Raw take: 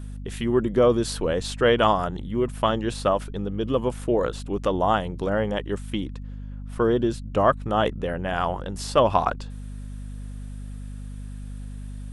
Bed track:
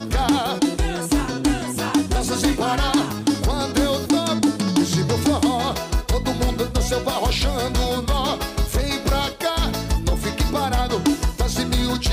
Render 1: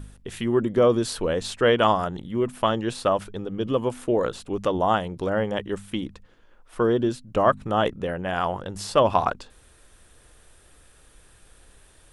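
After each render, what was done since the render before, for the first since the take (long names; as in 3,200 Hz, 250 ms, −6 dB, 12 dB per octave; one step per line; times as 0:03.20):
hum removal 50 Hz, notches 5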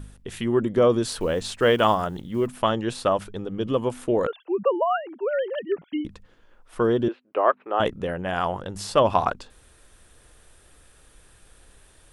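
0:01.09–0:02.59: one scale factor per block 7 bits
0:04.27–0:06.05: three sine waves on the formant tracks
0:07.08–0:07.80: Chebyshev band-pass filter 360–2,600 Hz, order 3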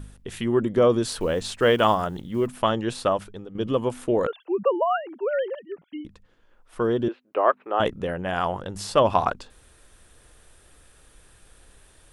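0:03.04–0:03.55: fade out linear, to −11 dB
0:05.55–0:07.40: fade in, from −12 dB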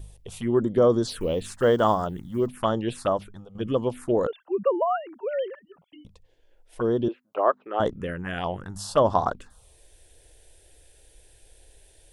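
phaser swept by the level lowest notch 190 Hz, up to 2,500 Hz, full sweep at −18.5 dBFS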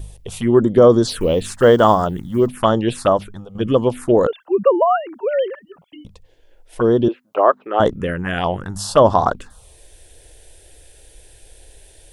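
level +9 dB
brickwall limiter −1 dBFS, peak gain reduction 3 dB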